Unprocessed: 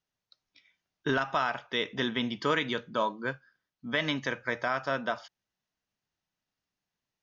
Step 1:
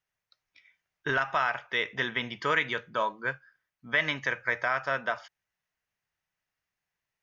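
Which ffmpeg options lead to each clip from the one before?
-af "equalizer=f=250:t=o:w=1:g=-9,equalizer=f=2k:t=o:w=1:g=7,equalizer=f=4k:t=o:w=1:g=-5"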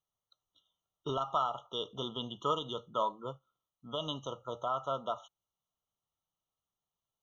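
-af "afftfilt=real='re*eq(mod(floor(b*sr/1024/1400),2),0)':imag='im*eq(mod(floor(b*sr/1024/1400),2),0)':win_size=1024:overlap=0.75,volume=-3dB"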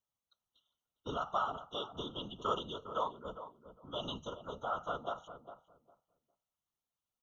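-filter_complex "[0:a]afftfilt=real='hypot(re,im)*cos(2*PI*random(0))':imag='hypot(re,im)*sin(2*PI*random(1))':win_size=512:overlap=0.75,asplit=2[a][b];[b]adelay=405,lowpass=f=1k:p=1,volume=-10dB,asplit=2[c][d];[d]adelay=405,lowpass=f=1k:p=1,volume=0.21,asplit=2[e][f];[f]adelay=405,lowpass=f=1k:p=1,volume=0.21[g];[a][c][e][g]amix=inputs=4:normalize=0,volume=2.5dB"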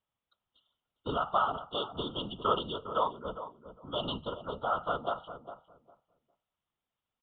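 -af "aresample=8000,aresample=44100,volume=6dB"

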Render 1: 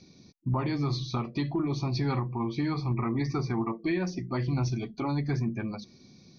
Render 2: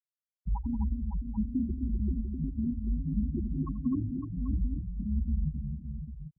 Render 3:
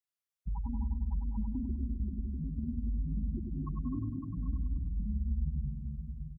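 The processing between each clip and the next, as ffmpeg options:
-af "afftfilt=real='re*gte(hypot(re,im),0.251)':imag='im*gte(hypot(re,im),0.251)':win_size=1024:overlap=0.75,aecho=1:1:85|181|256|557|788:0.119|0.178|0.447|0.355|0.266,afreqshift=-75"
-af "equalizer=f=310:w=0.72:g=-6.5,acompressor=threshold=-32dB:ratio=6,aecho=1:1:100|200|300|400|500|600:0.562|0.259|0.119|0.0547|0.0252|0.0116"

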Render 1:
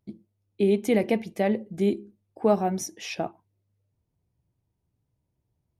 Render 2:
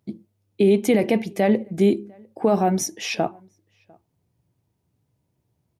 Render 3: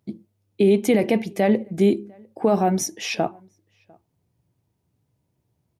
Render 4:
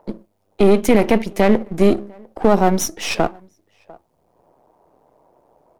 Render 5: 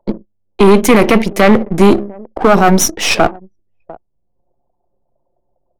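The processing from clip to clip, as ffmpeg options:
-filter_complex "[0:a]highpass=98,alimiter=limit=-16.5dB:level=0:latency=1:release=20,asplit=2[a][b];[b]adelay=699.7,volume=-29dB,highshelf=f=4k:g=-15.7[c];[a][c]amix=inputs=2:normalize=0,volume=7.5dB"
-af anull
-filter_complex "[0:a]aeval=exprs='if(lt(val(0),0),0.251*val(0),val(0))':c=same,equalizer=f=110:t=o:w=0.36:g=-13.5,acrossover=split=590|840[a][b][c];[b]acompressor=mode=upward:threshold=-39dB:ratio=2.5[d];[a][d][c]amix=inputs=3:normalize=0,volume=7.5dB"
-filter_complex "[0:a]anlmdn=0.398,asplit=2[a][b];[b]aeval=exprs='0.891*sin(PI/2*2.51*val(0)/0.891)':c=same,volume=-3.5dB[c];[a][c]amix=inputs=2:normalize=0,volume=-1dB"

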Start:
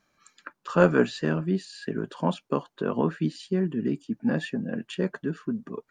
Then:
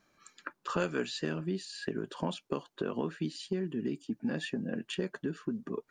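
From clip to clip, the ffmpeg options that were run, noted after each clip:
-filter_complex "[0:a]equalizer=f=360:t=o:w=0.77:g=4,acrossover=split=2400[a][b];[a]acompressor=threshold=-32dB:ratio=4[c];[c][b]amix=inputs=2:normalize=0"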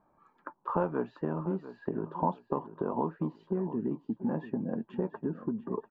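-af "lowpass=f=920:t=q:w=4.9,lowshelf=f=360:g=5,aecho=1:1:693|1386|2079:0.2|0.0519|0.0135,volume=-2.5dB"

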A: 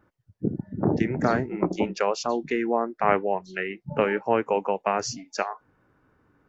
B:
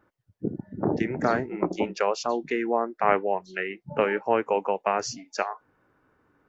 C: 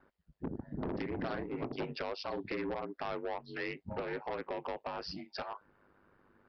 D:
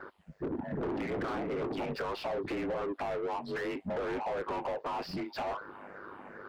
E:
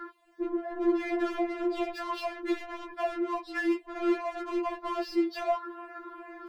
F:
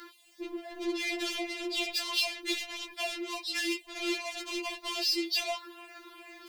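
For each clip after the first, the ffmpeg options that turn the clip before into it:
-af "bass=f=250:g=-6,treble=f=4k:g=-2"
-af "acompressor=threshold=-27dB:ratio=6,aeval=exprs='val(0)*sin(2*PI*50*n/s)':c=same,aresample=11025,asoftclip=type=tanh:threshold=-33dB,aresample=44100,volume=2dB"
-filter_complex "[0:a]afftfilt=real='re*pow(10,9/40*sin(2*PI*(0.57*log(max(b,1)*sr/1024/100)/log(2)-(-2.5)*(pts-256)/sr)))':imag='im*pow(10,9/40*sin(2*PI*(0.57*log(max(b,1)*sr/1024/100)/log(2)-(-2.5)*(pts-256)/sr)))':win_size=1024:overlap=0.75,acompressor=threshold=-39dB:ratio=6,asplit=2[a][b];[b]highpass=f=720:p=1,volume=27dB,asoftclip=type=tanh:threshold=-31dB[c];[a][c]amix=inputs=2:normalize=0,lowpass=f=1.1k:p=1,volume=-6dB,volume=4.5dB"
-af "afftfilt=real='re*4*eq(mod(b,16),0)':imag='im*4*eq(mod(b,16),0)':win_size=2048:overlap=0.75,volume=6dB"
-af "aexciter=amount=6.9:drive=9.1:freq=2.3k,volume=-7.5dB"

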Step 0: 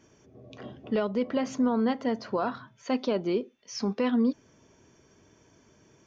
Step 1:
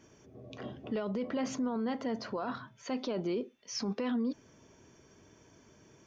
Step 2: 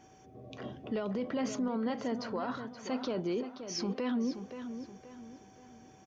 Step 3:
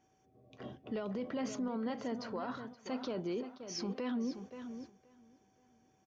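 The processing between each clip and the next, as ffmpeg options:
-af "alimiter=level_in=2.5dB:limit=-24dB:level=0:latency=1:release=19,volume=-2.5dB"
-filter_complex "[0:a]aeval=exprs='val(0)+0.001*sin(2*PI*760*n/s)':c=same,asplit=2[a][b];[b]adelay=526,lowpass=f=4.4k:p=1,volume=-9.5dB,asplit=2[c][d];[d]adelay=526,lowpass=f=4.4k:p=1,volume=0.38,asplit=2[e][f];[f]adelay=526,lowpass=f=4.4k:p=1,volume=0.38,asplit=2[g][h];[h]adelay=526,lowpass=f=4.4k:p=1,volume=0.38[i];[a][c][e][g][i]amix=inputs=5:normalize=0"
-af "agate=range=-10dB:threshold=-45dB:ratio=16:detection=peak,volume=-4dB"

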